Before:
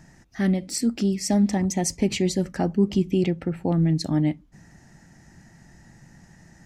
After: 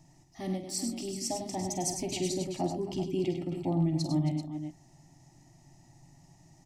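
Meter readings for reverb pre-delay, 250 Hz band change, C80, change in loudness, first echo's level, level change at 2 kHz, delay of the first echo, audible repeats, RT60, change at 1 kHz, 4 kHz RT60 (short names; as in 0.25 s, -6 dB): none, -10.0 dB, none, -9.0 dB, -10.0 dB, -13.0 dB, 48 ms, 4, none, -4.0 dB, none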